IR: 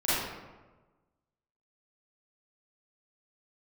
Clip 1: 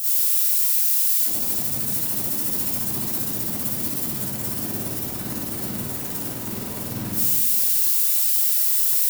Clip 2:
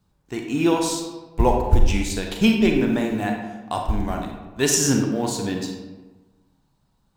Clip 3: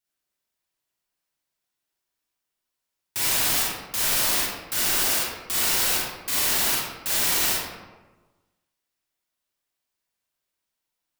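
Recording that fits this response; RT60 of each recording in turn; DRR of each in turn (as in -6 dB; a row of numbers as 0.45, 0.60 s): 1; 1.2, 1.2, 1.2 s; -13.0, 2.0, -6.0 dB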